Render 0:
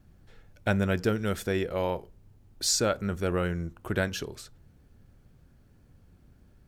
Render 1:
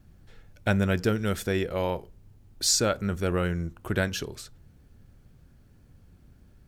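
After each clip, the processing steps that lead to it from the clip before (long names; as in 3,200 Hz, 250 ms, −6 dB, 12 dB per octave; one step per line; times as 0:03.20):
parametric band 660 Hz −2.5 dB 3 octaves
level +3 dB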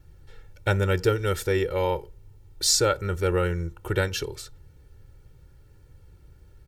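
comb filter 2.2 ms, depth 86%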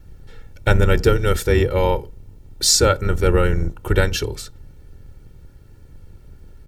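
sub-octave generator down 2 octaves, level +2 dB
level +6 dB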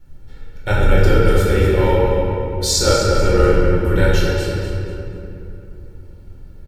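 repeating echo 243 ms, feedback 31%, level −10 dB
rectangular room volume 120 cubic metres, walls hard, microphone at 0.99 metres
level −7 dB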